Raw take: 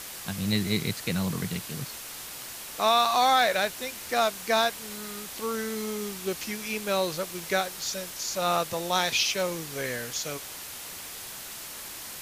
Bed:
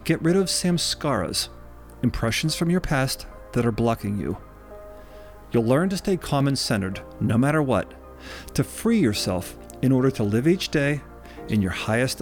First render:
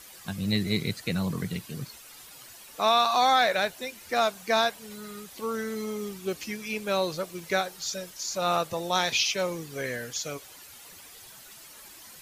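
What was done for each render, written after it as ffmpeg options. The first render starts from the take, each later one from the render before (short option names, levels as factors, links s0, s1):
-af "afftdn=nr=11:nf=-40"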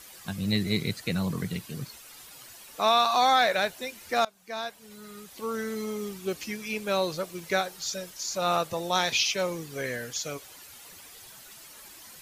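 -filter_complex "[0:a]asplit=2[s0][s1];[s0]atrim=end=4.25,asetpts=PTS-STARTPTS,afade=t=out:st=4.246:d=0.004:c=hsin:silence=0.0668344[s2];[s1]atrim=start=4.25,asetpts=PTS-STARTPTS,afade=t=in:d=1.4:silence=0.0668344[s3];[s2][s3]concat=n=2:v=0:a=1"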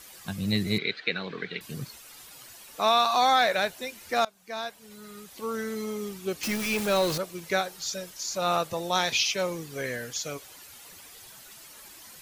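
-filter_complex "[0:a]asettb=1/sr,asplit=3[s0][s1][s2];[s0]atrim=end=0.784[s3];[s1]atrim=start=0.78:end=1.61,asetpts=PTS-STARTPTS,afade=t=in:d=0.004:c=qsin,afade=t=out:st=0.826:d=0.004:c=qsin,highpass=350,equalizer=f=420:t=q:w=4:g=6,equalizer=f=620:t=q:w=4:g=-3,equalizer=f=970:t=q:w=4:g=-5,equalizer=f=1600:t=q:w=4:g=9,equalizer=f=2300:t=q:w=4:g=8,equalizer=f=3800:t=q:w=4:g=8,lowpass=f=3900:w=0.5412,lowpass=f=3900:w=1.3066[s4];[s2]atrim=start=1.606[s5];[s3][s4]acrossfade=d=0.004:c1=hsin:c2=qsin[s6];[s6][s5]acrossfade=d=0.004:c1=qsin:c2=hsin,asettb=1/sr,asplit=3[s7][s8][s9];[s7]atrim=end=6.434[s10];[s8]atrim=start=6.43:end=7.18,asetpts=PTS-STARTPTS,afade=t=in:d=0.004:c=qsin,afade=t=out:st=0.746:d=0.004:c=qsin,aeval=exprs='val(0)+0.5*0.0422*sgn(val(0))':c=same[s11];[s9]atrim=start=7.176[s12];[s10][s11]acrossfade=d=0.004:c1=hsin:c2=qsin[s13];[s13][s12]acrossfade=d=0.004:c1=qsin:c2=hsin"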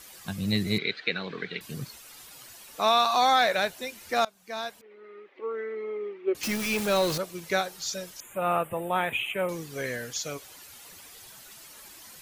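-filter_complex "[0:a]asettb=1/sr,asplit=3[s0][s1][s2];[s0]atrim=end=4.814[s3];[s1]atrim=start=4.81:end=6.35,asetpts=PTS-STARTPTS,afade=t=in:d=0.004:c=qsin,afade=t=out:st=1.536:d=0.004:c=qsin,highpass=f=350:w=0.5412,highpass=f=350:w=1.3066,equalizer=f=370:t=q:w=4:g=8,equalizer=f=710:t=q:w=4:g=-7,equalizer=f=1000:t=q:w=4:g=-6,equalizer=f=1500:t=q:w=4:g=-7,equalizer=f=2100:t=q:w=4:g=4,lowpass=f=2200:w=0.5412,lowpass=f=2200:w=1.3066[s4];[s2]atrim=start=6.346[s5];[s3][s4]acrossfade=d=0.004:c1=hsin:c2=qsin[s6];[s6][s5]acrossfade=d=0.004:c1=qsin:c2=hsin,asettb=1/sr,asplit=3[s7][s8][s9];[s7]atrim=end=8.204[s10];[s8]atrim=start=8.2:end=9.49,asetpts=PTS-STARTPTS,afade=t=in:d=0.004:c=qsin,afade=t=out:st=1.286:d=0.004:c=qsin,asuperstop=centerf=5100:order=8:qfactor=0.95[s11];[s9]atrim=start=9.486[s12];[s10][s11]acrossfade=d=0.004:c1=hsin:c2=qsin[s13];[s13][s12]acrossfade=d=0.004:c1=qsin:c2=hsin"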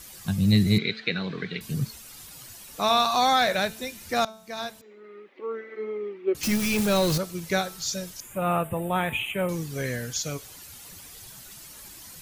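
-af "bass=f=250:g=11,treble=f=4000:g=4,bandreject=f=220.3:t=h:w=4,bandreject=f=440.6:t=h:w=4,bandreject=f=660.9:t=h:w=4,bandreject=f=881.2:t=h:w=4,bandreject=f=1101.5:t=h:w=4,bandreject=f=1321.8:t=h:w=4,bandreject=f=1542.1:t=h:w=4,bandreject=f=1762.4:t=h:w=4,bandreject=f=1982.7:t=h:w=4,bandreject=f=2203:t=h:w=4,bandreject=f=2423.3:t=h:w=4,bandreject=f=2643.6:t=h:w=4,bandreject=f=2863.9:t=h:w=4,bandreject=f=3084.2:t=h:w=4,bandreject=f=3304.5:t=h:w=4,bandreject=f=3524.8:t=h:w=4,bandreject=f=3745.1:t=h:w=4,bandreject=f=3965.4:t=h:w=4,bandreject=f=4185.7:t=h:w=4,bandreject=f=4406:t=h:w=4,bandreject=f=4626.3:t=h:w=4,bandreject=f=4846.6:t=h:w=4,bandreject=f=5066.9:t=h:w=4,bandreject=f=5287.2:t=h:w=4,bandreject=f=5507.5:t=h:w=4,bandreject=f=5727.8:t=h:w=4,bandreject=f=5948.1:t=h:w=4,bandreject=f=6168.4:t=h:w=4,bandreject=f=6388.7:t=h:w=4,bandreject=f=6609:t=h:w=4,bandreject=f=6829.3:t=h:w=4,bandreject=f=7049.6:t=h:w=4,bandreject=f=7269.9:t=h:w=4,bandreject=f=7490.2:t=h:w=4"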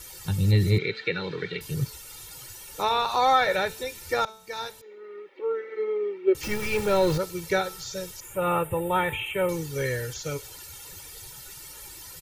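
-filter_complex "[0:a]acrossover=split=2600[s0][s1];[s1]acompressor=threshold=0.0126:ratio=4:attack=1:release=60[s2];[s0][s2]amix=inputs=2:normalize=0,aecho=1:1:2.2:0.77"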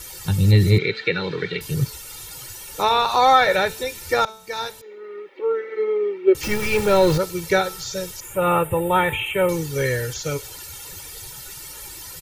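-af "volume=2"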